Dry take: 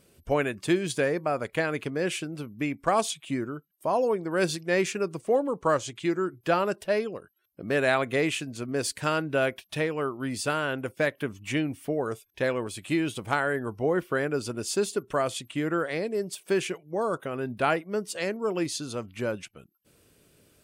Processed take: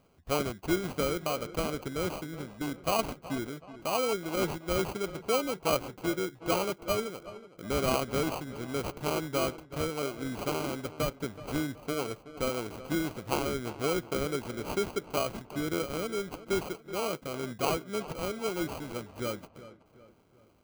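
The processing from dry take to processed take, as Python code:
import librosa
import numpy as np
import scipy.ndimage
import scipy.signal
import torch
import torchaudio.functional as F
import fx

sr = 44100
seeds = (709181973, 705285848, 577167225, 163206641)

y = fx.sample_hold(x, sr, seeds[0], rate_hz=1800.0, jitter_pct=0)
y = fx.echo_filtered(y, sr, ms=375, feedback_pct=44, hz=2800.0, wet_db=-15.0)
y = y * librosa.db_to_amplitude(-4.5)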